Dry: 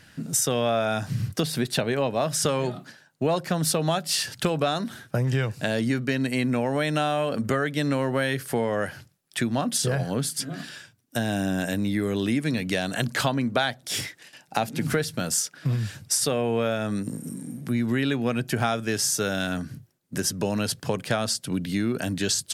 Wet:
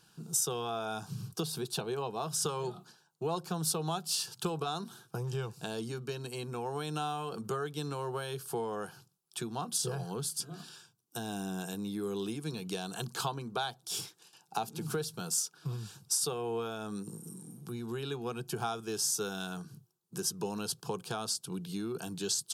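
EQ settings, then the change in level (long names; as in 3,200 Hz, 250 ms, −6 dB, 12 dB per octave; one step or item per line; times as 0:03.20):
low-shelf EQ 150 Hz −8.5 dB
phaser with its sweep stopped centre 390 Hz, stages 8
−5.5 dB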